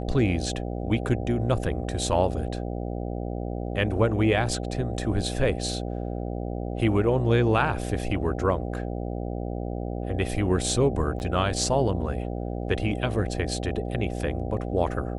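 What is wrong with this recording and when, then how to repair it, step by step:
mains buzz 60 Hz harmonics 13 −31 dBFS
0:11.19–0:11.20: drop-out 9.7 ms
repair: hum removal 60 Hz, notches 13
repair the gap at 0:11.19, 9.7 ms

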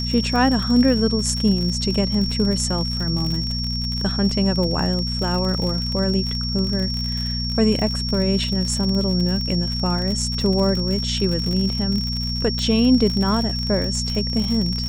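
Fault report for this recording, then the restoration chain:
surface crackle 56 per second −24 dBFS
mains hum 60 Hz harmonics 4 −26 dBFS
whistle 5,500 Hz −26 dBFS
0:12.59: click −13 dBFS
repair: click removal
hum removal 60 Hz, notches 4
notch filter 5,500 Hz, Q 30

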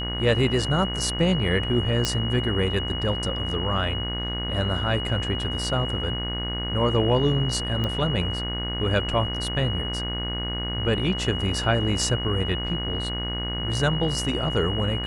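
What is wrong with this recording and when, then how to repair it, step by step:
mains buzz 60 Hz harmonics 37 −31 dBFS
whistle 2,900 Hz −30 dBFS
0:02.05: click −7 dBFS
0:07.84: click −15 dBFS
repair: click removal
hum removal 60 Hz, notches 37
notch filter 2,900 Hz, Q 30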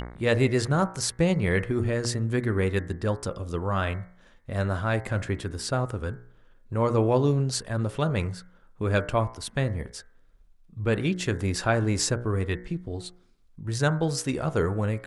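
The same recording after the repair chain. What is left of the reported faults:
0:07.84: click

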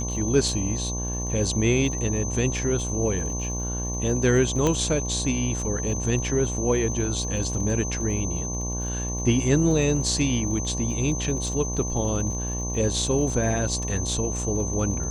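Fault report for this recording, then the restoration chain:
mains buzz 60 Hz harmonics 19 −30 dBFS
surface crackle 40 per second −34 dBFS
whistle 6,200 Hz −31 dBFS
0:04.67: click −10 dBFS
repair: click removal
notch filter 6,200 Hz, Q 30
hum removal 60 Hz, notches 19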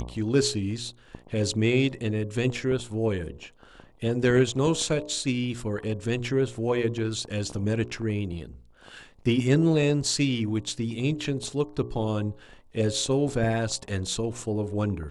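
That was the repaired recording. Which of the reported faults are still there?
none of them is left

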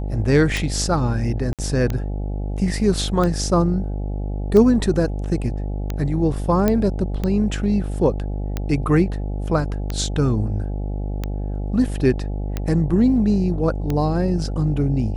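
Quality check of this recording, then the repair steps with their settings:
mains buzz 50 Hz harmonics 17 −25 dBFS
scratch tick 45 rpm
0:01.53–0:01.59: drop-out 57 ms
0:06.68: click −6 dBFS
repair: click removal
hum removal 50 Hz, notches 17
repair the gap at 0:01.53, 57 ms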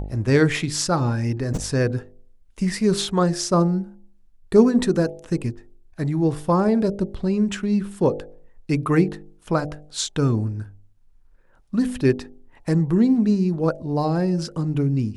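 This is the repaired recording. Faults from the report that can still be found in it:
none of them is left

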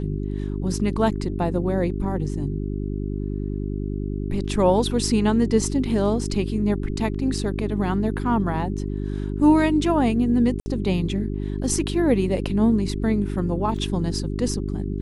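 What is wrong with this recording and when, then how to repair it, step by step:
mains hum 50 Hz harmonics 8 −27 dBFS
0:10.60–0:10.66: drop-out 60 ms
0:13.77: drop-out 2.1 ms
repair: hum removal 50 Hz, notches 8
repair the gap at 0:10.60, 60 ms
repair the gap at 0:13.77, 2.1 ms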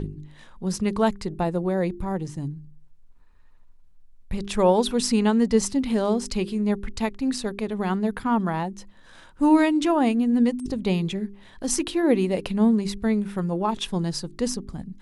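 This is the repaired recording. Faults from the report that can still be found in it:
none of them is left

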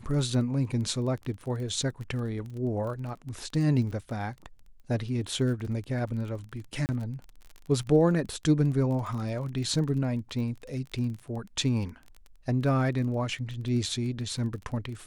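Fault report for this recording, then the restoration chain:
surface crackle 23 per second −36 dBFS
0:06.86–0:06.89: drop-out 29 ms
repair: click removal
repair the gap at 0:06.86, 29 ms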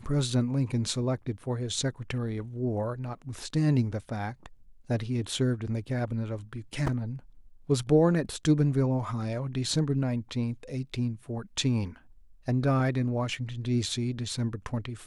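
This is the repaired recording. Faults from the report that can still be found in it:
none of them is left

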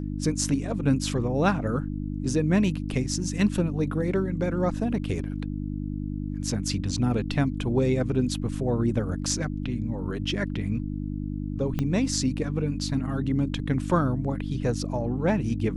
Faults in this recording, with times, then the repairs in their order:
mains hum 50 Hz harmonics 6 −31 dBFS
0:11.79: click −15 dBFS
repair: click removal
hum removal 50 Hz, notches 6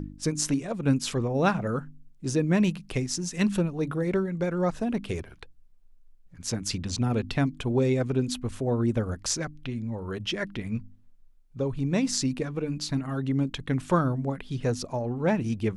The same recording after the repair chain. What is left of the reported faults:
0:11.79: click

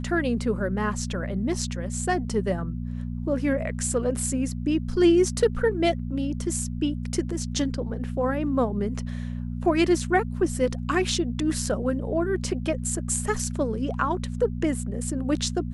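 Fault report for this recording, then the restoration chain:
mains hum 60 Hz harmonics 4 −31 dBFS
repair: hum removal 60 Hz, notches 4

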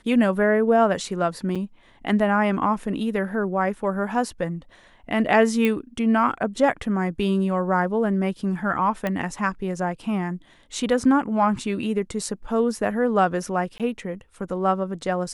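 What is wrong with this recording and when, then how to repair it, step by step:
0:01.55–0:01.56: drop-out 5.8 ms
0:05.65: click −11 dBFS
0:09.07: click −13 dBFS
0:13.78–0:13.80: drop-out 17 ms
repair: click removal
repair the gap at 0:01.55, 5.8 ms
repair the gap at 0:13.78, 17 ms

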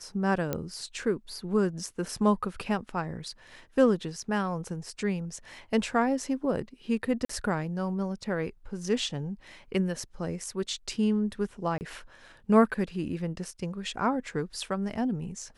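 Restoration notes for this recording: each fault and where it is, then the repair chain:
0:00.53: click −15 dBFS
0:07.25–0:07.29: drop-out 44 ms
0:11.78–0:11.81: drop-out 29 ms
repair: click removal
repair the gap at 0:07.25, 44 ms
repair the gap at 0:11.78, 29 ms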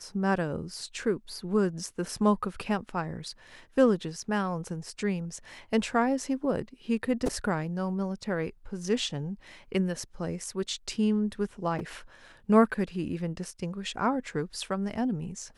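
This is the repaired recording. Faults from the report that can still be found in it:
none of them is left

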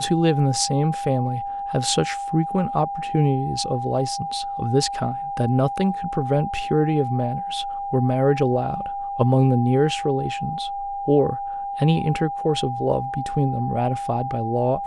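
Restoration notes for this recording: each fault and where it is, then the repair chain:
whistle 800 Hz −26 dBFS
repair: notch filter 800 Hz, Q 30

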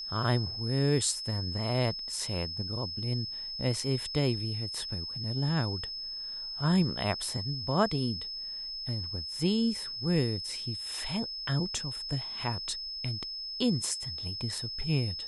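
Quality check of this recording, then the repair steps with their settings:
whistle 5,200 Hz −36 dBFS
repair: notch filter 5,200 Hz, Q 30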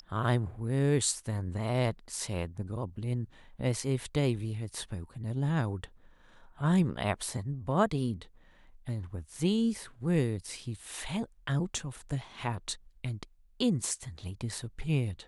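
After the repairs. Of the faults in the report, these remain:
none of them is left

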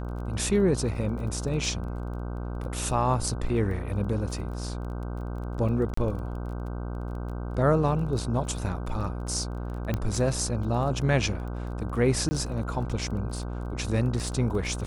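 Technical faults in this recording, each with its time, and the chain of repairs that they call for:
mains buzz 60 Hz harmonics 26 −33 dBFS
surface crackle 23 per second −37 dBFS
0:05.94–0:05.97: drop-out 34 ms
0:09.94: click −15 dBFS
0:12.29–0:12.31: drop-out 20 ms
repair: click removal
hum removal 60 Hz, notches 26
repair the gap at 0:05.94, 34 ms
repair the gap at 0:12.29, 20 ms

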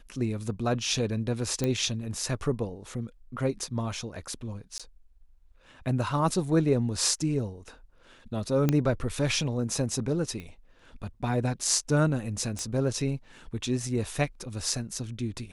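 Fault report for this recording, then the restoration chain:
0:01.64: click −14 dBFS
0:04.78–0:04.80: drop-out 16 ms
0:08.69: click −11 dBFS
0:10.40: click −26 dBFS
0:12.59: click −20 dBFS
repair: click removal
repair the gap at 0:04.78, 16 ms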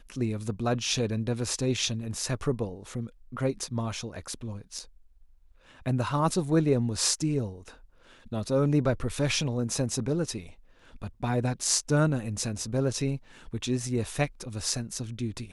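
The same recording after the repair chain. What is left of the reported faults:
none of them is left

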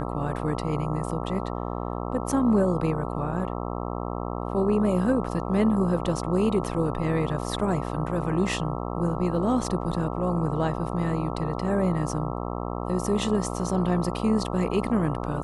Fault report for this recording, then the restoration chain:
mains buzz 60 Hz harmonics 22 −31 dBFS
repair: hum removal 60 Hz, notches 22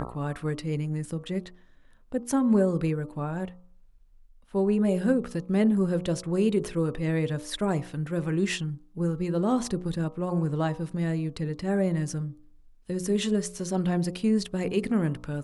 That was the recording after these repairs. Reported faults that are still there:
none of them is left

